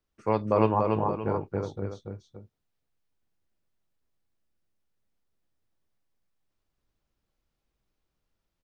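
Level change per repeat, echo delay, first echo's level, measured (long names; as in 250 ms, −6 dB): −6.5 dB, 286 ms, −3.5 dB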